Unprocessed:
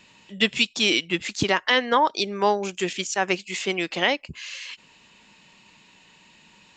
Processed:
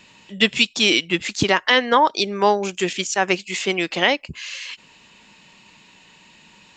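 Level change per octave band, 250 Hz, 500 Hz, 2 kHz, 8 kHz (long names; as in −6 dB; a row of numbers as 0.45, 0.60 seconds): +4.0, +4.0, +4.0, +4.0 decibels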